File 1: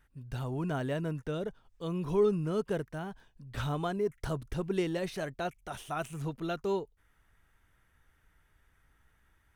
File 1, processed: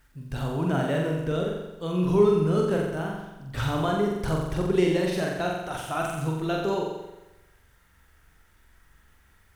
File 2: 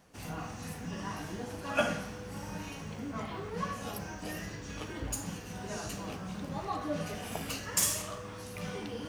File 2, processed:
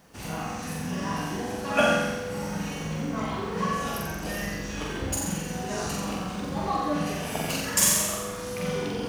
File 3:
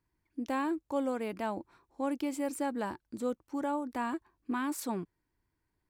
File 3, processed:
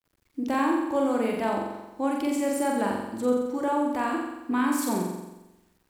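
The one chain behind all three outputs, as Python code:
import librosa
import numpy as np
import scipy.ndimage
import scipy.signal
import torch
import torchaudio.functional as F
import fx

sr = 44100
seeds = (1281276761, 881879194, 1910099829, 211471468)

y = fx.room_flutter(x, sr, wall_m=7.6, rt60_s=1.0)
y = fx.quant_dither(y, sr, seeds[0], bits=12, dither='none')
y = y * librosa.db_to_amplitude(5.0)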